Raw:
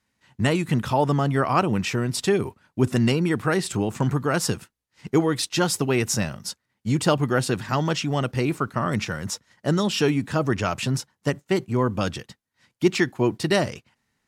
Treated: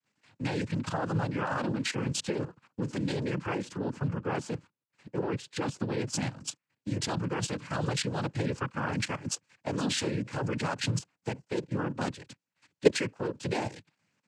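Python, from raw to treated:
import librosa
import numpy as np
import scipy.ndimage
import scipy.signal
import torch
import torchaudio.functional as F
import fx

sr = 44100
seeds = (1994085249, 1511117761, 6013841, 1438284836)

y = fx.high_shelf(x, sr, hz=fx.line((3.51, 2300.0), (6.13, 4200.0)), db=-11.5, at=(3.51, 6.13), fade=0.02)
y = fx.level_steps(y, sr, step_db=15)
y = fx.noise_vocoder(y, sr, seeds[0], bands=8)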